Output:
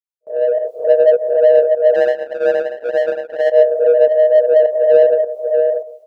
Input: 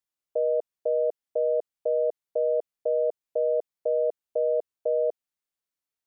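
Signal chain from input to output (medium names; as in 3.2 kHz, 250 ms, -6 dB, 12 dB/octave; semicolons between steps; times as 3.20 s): phase randomisation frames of 200 ms; bass shelf 480 Hz -8.5 dB; thinning echo 637 ms, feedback 34%, high-pass 320 Hz, level -3 dB; gate with hold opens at -45 dBFS; 4.07–4.87 s: comb 3.4 ms, depth 41%; in parallel at -6 dB: saturation -30.5 dBFS, distortion -10 dB; on the sum: level rider gain up to 8.5 dB; 1.94–3.52 s: power-law waveshaper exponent 2; volume shaper 103 bpm, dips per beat 1, -11 dB, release 149 ms; trim +7.5 dB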